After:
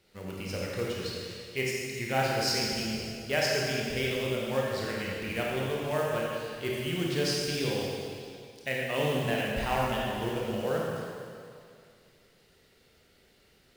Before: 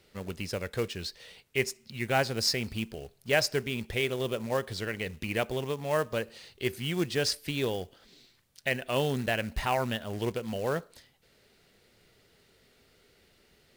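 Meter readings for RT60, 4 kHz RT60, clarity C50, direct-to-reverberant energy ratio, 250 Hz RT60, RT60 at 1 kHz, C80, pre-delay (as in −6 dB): 2.3 s, 2.3 s, −2.0 dB, −4.0 dB, 2.2 s, 2.3 s, 0.0 dB, 21 ms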